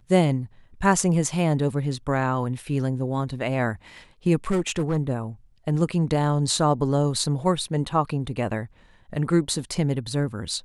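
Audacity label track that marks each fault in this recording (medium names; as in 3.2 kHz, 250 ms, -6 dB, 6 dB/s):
4.510000	4.980000	clipped -18.5 dBFS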